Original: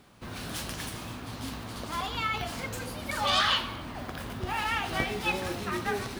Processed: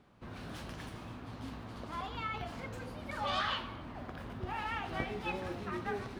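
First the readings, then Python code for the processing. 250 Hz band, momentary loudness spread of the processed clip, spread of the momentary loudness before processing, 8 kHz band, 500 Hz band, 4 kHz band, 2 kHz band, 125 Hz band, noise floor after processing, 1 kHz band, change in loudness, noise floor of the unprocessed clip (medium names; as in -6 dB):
-5.5 dB, 10 LU, 13 LU, -18.0 dB, -6.0 dB, -12.5 dB, -9.0 dB, -5.5 dB, -48 dBFS, -7.0 dB, -8.5 dB, -41 dBFS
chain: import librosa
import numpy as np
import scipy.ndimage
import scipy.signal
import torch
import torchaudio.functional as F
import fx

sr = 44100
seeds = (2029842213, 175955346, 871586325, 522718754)

y = fx.lowpass(x, sr, hz=1700.0, slope=6)
y = F.gain(torch.from_numpy(y), -5.5).numpy()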